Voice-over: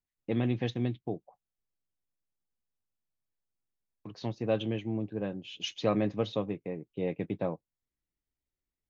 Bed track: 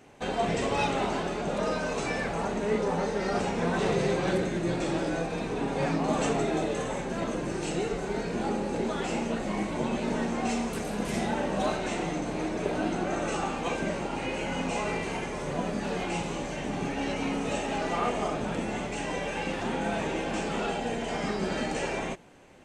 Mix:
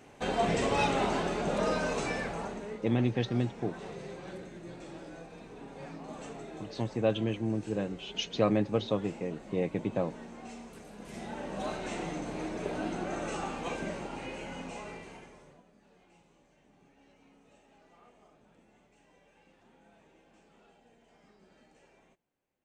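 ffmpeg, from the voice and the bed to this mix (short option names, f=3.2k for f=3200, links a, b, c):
-filter_complex "[0:a]adelay=2550,volume=1.5dB[a];[1:a]volume=10.5dB,afade=t=out:st=1.84:d=0.95:silence=0.158489,afade=t=in:st=10.99:d=0.96:silence=0.281838,afade=t=out:st=13.74:d=1.89:silence=0.0473151[b];[a][b]amix=inputs=2:normalize=0"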